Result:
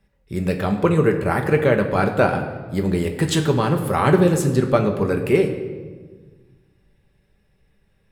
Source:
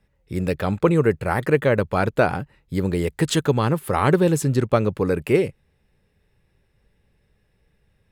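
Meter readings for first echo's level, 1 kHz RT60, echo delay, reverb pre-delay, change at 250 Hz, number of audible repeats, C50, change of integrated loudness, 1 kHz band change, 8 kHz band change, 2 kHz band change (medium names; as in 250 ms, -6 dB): no echo, 1.4 s, no echo, 5 ms, +2.0 dB, no echo, 8.5 dB, +1.5 dB, +2.0 dB, +1.0 dB, +1.5 dB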